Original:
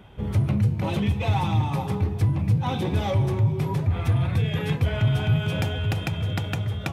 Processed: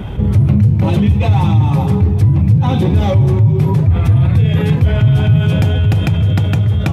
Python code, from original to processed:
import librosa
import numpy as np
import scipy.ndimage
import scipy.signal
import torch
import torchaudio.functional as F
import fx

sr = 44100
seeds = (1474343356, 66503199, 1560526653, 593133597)

y = fx.low_shelf(x, sr, hz=350.0, db=10.5)
y = fx.env_flatten(y, sr, amount_pct=50)